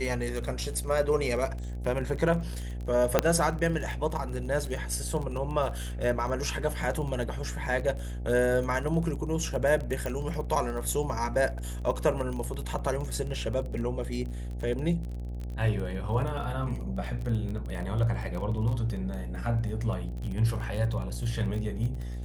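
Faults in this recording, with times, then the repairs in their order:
mains buzz 60 Hz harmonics 14 −35 dBFS
surface crackle 24 per second −33 dBFS
0:03.19: click −6 dBFS
0:10.06: click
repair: click removal
hum removal 60 Hz, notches 14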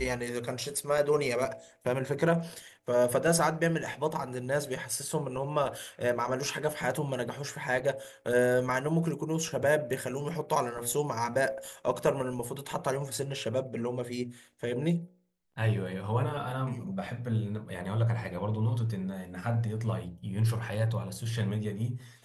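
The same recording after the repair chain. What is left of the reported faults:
none of them is left

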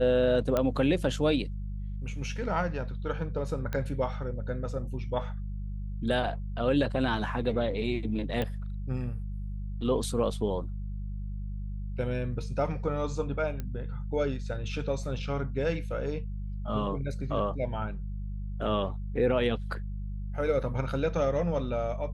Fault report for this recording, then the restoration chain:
mains hum 50 Hz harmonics 4 −35 dBFS
0:00.57: click −14 dBFS
0:03.73: click −20 dBFS
0:08.42: click −19 dBFS
0:13.60: click −22 dBFS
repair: click removal
hum removal 50 Hz, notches 4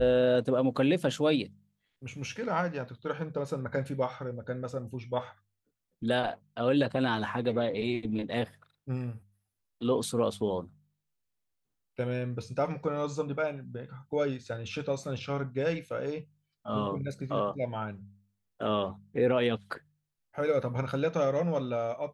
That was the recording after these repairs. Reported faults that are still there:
none of them is left

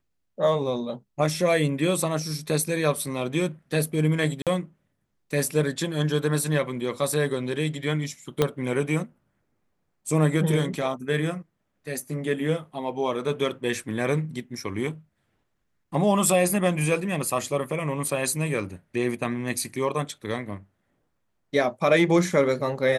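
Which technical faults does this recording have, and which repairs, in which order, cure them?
0:04.42–0:04.47: drop-out 47 ms
0:08.42: click −8 dBFS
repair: click removal
repair the gap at 0:04.42, 47 ms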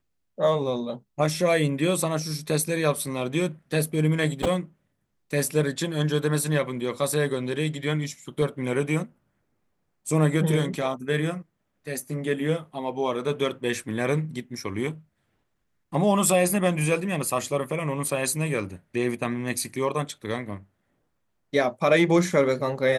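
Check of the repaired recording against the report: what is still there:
0:08.42: click

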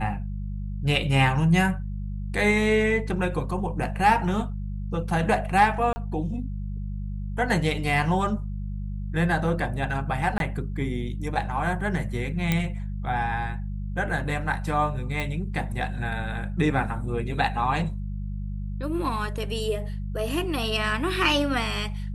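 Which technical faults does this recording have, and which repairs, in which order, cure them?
mains hum 50 Hz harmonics 4 −31 dBFS
0:05.93–0:05.96: drop-out 30 ms
0:10.38–0:10.40: drop-out 22 ms
0:12.52: click −9 dBFS
0:15.20: click −16 dBFS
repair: click removal
hum removal 50 Hz, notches 4
repair the gap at 0:05.93, 30 ms
repair the gap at 0:10.38, 22 ms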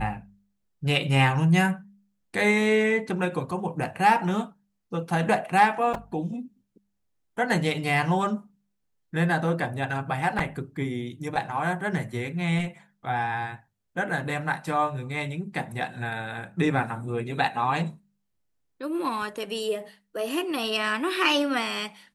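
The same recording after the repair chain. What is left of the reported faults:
none of them is left

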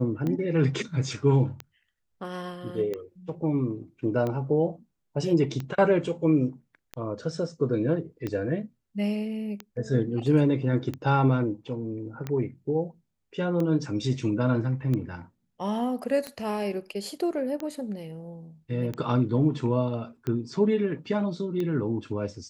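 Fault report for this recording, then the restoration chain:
scratch tick 45 rpm −19 dBFS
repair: click removal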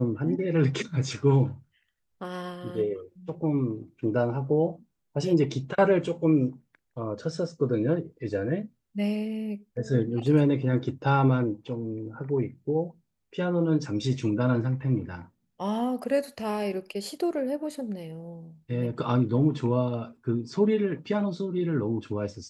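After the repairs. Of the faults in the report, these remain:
none of them is left

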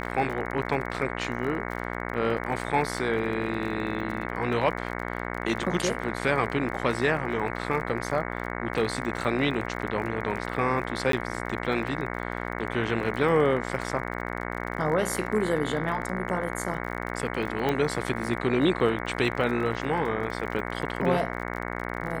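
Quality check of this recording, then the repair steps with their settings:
mains buzz 60 Hz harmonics 37 −33 dBFS
surface crackle 34 per second −34 dBFS
0:11.12–0:11.13: drop-out 13 ms
0:17.69: click −14 dBFS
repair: click removal
hum removal 60 Hz, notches 37
repair the gap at 0:11.12, 13 ms

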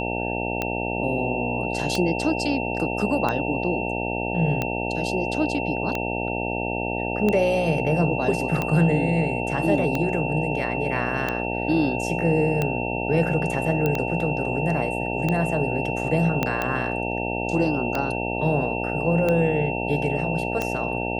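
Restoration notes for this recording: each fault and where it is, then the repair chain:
mains buzz 60 Hz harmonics 15 −28 dBFS
scratch tick 45 rpm −11 dBFS
whistle 2,700 Hz −30 dBFS
0:13.86: click −11 dBFS
0:16.43: click −8 dBFS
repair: click removal
notch filter 2,700 Hz, Q 30
hum removal 60 Hz, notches 15

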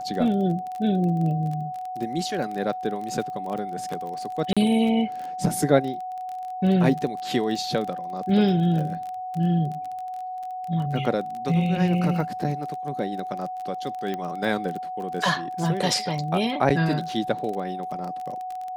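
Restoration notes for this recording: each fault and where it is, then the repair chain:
surface crackle 22 per second −30 dBFS
whistle 740 Hz −30 dBFS
0:04.53–0:04.57: drop-out 36 ms
0:14.14: click −17 dBFS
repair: click removal
notch filter 740 Hz, Q 30
repair the gap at 0:04.53, 36 ms

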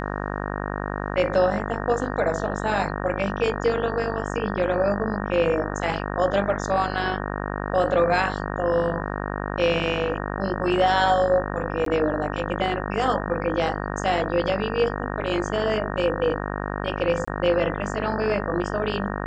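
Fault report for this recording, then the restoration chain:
mains buzz 50 Hz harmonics 37 −29 dBFS
0:11.85–0:11.86: drop-out 13 ms
0:17.25–0:17.27: drop-out 25 ms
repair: hum removal 50 Hz, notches 37
repair the gap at 0:11.85, 13 ms
repair the gap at 0:17.25, 25 ms

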